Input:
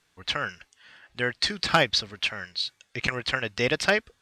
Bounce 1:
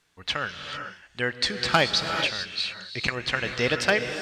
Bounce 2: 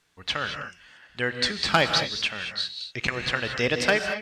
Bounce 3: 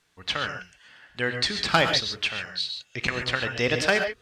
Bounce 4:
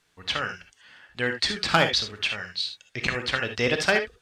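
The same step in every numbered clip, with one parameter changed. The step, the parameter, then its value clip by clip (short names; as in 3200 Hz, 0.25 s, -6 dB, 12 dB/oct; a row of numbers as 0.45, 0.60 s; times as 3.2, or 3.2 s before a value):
non-linear reverb, gate: 470, 250, 160, 90 ms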